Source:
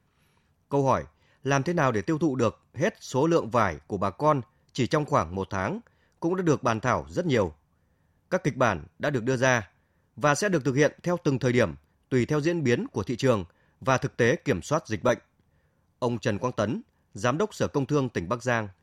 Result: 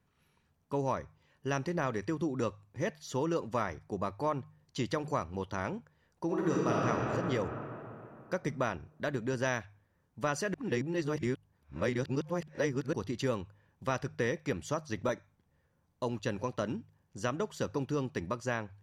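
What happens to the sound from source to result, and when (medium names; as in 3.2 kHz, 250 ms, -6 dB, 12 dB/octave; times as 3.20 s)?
6.25–6.88 s: reverb throw, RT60 2.9 s, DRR -5 dB
10.54–12.93 s: reverse
whole clip: de-hum 50.85 Hz, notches 3; compression 2:1, threshold -25 dBFS; trim -5.5 dB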